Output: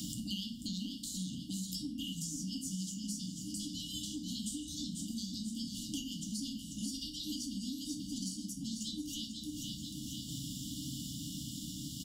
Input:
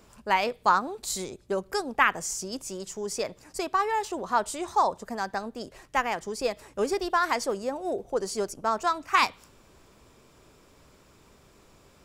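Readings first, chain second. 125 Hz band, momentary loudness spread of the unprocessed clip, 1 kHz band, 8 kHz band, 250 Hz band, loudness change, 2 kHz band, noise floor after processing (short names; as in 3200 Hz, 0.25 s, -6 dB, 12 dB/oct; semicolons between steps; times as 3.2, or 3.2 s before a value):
+4.5 dB, 10 LU, under -40 dB, -3.5 dB, -0.5 dB, -11.5 dB, -33.0 dB, -46 dBFS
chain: HPF 67 Hz 12 dB/oct; bell 480 Hz +12 dB 0.61 oct; FFT band-reject 310–2800 Hz; compressor 3:1, threshold -48 dBFS, peak gain reduction 16 dB; random-step tremolo; feedback echo 0.488 s, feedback 40%, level -9 dB; shoebox room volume 44 m³, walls mixed, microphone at 0.59 m; three-band squash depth 100%; gain +7 dB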